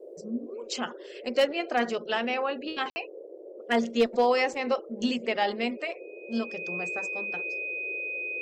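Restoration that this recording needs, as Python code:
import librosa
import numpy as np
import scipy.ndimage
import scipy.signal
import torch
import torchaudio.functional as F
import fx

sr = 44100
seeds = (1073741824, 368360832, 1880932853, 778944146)

y = fx.fix_declip(x, sr, threshold_db=-15.0)
y = fx.notch(y, sr, hz=2500.0, q=30.0)
y = fx.fix_ambience(y, sr, seeds[0], print_start_s=5.78, print_end_s=6.28, start_s=2.9, end_s=2.96)
y = fx.noise_reduce(y, sr, print_start_s=3.06, print_end_s=3.56, reduce_db=29.0)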